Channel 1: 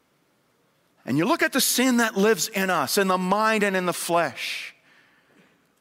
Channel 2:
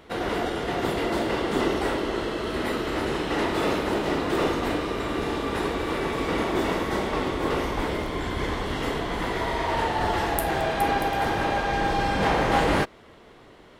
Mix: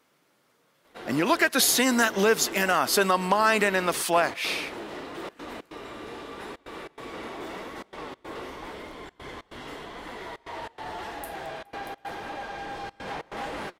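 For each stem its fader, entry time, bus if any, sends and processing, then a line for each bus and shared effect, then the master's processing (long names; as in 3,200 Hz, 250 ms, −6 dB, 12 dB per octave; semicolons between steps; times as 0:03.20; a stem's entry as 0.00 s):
+0.5 dB, 0.00 s, no send, no processing
−5.0 dB, 0.85 s, no send, flanger 0.87 Hz, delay 3.2 ms, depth 6.4 ms, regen +68%; gate pattern "xxxxxx.xx.xx" 142 BPM −24 dB; soft clipping −21 dBFS, distortion −19 dB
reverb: not used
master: low-shelf EQ 240 Hz −9 dB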